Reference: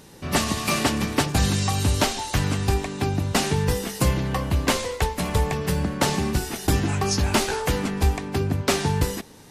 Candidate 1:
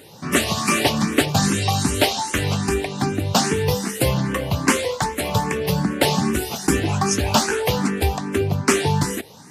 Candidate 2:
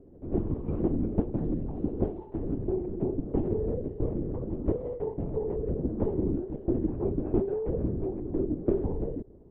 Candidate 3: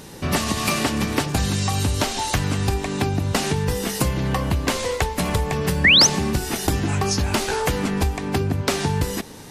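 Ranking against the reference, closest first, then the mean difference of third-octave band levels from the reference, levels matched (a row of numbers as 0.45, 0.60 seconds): 3, 1, 2; 2.0, 4.0, 18.0 decibels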